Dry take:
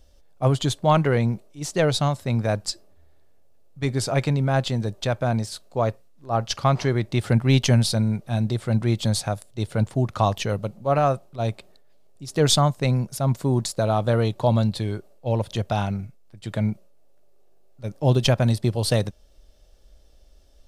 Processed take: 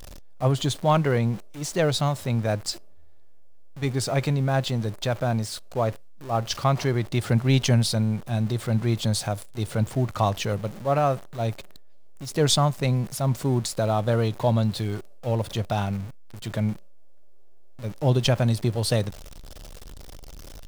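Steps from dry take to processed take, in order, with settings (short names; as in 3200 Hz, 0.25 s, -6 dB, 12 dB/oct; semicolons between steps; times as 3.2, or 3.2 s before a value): zero-crossing step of -33.5 dBFS; gain -2.5 dB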